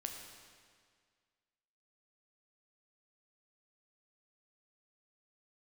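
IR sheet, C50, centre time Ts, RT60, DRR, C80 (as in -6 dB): 4.5 dB, 55 ms, 1.9 s, 2.5 dB, 5.0 dB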